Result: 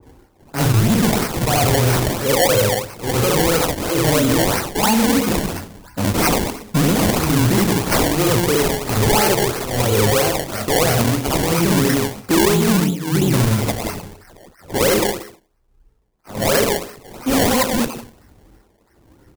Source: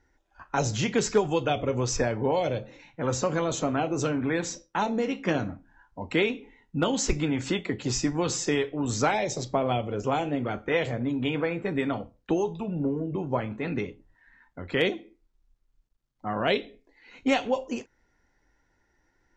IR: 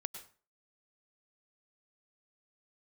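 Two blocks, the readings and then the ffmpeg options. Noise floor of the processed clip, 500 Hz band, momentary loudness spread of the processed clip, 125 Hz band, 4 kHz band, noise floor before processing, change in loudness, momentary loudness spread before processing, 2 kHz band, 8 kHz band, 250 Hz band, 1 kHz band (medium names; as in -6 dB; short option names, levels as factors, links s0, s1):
-57 dBFS, +9.0 dB, 8 LU, +14.0 dB, +13.0 dB, -71 dBFS, +11.0 dB, 7 LU, +9.5 dB, +13.0 dB, +10.5 dB, +9.5 dB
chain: -filter_complex "[0:a]acrossover=split=430|1600[s0][s1][s2];[s1]asoftclip=type=tanh:threshold=0.0224[s3];[s2]aecho=1:1:30|69|119.7|185.6|271.3:0.631|0.398|0.251|0.158|0.1[s4];[s0][s3][s4]amix=inputs=3:normalize=0,acrossover=split=2200[s5][s6];[s5]aeval=exprs='val(0)*(1-1/2+1/2*cos(2*PI*1.2*n/s))':c=same[s7];[s6]aeval=exprs='val(0)*(1-1/2-1/2*cos(2*PI*1.2*n/s))':c=same[s8];[s7][s8]amix=inputs=2:normalize=0,flanger=delay=8.6:depth=1.2:regen=69:speed=0.96:shape=sinusoidal,highpass=52,aphaser=in_gain=1:out_gain=1:delay=2.5:decay=0.55:speed=0.16:type=triangular,asoftclip=type=hard:threshold=0.0237,asplit=2[s9][s10];[1:a]atrim=start_sample=2205,lowpass=3600,adelay=66[s11];[s10][s11]afir=irnorm=-1:irlink=0,volume=1.88[s12];[s9][s12]amix=inputs=2:normalize=0,acrusher=samples=24:mix=1:aa=0.000001:lfo=1:lforange=24:lforate=3,equalizer=f=2800:w=0.53:g=-6,alimiter=level_in=26.6:limit=0.891:release=50:level=0:latency=1,adynamicequalizer=threshold=0.0447:dfrequency=1700:dqfactor=0.7:tfrequency=1700:tqfactor=0.7:attack=5:release=100:ratio=0.375:range=3.5:mode=boostabove:tftype=highshelf,volume=0.376"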